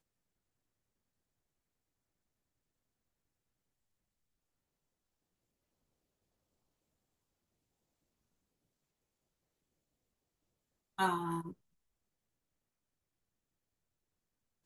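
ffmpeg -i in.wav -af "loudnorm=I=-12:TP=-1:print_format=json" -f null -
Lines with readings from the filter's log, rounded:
"input_i" : "-36.0",
"input_tp" : "-19.0",
"input_lra" : "16.3",
"input_thresh" : "-47.5",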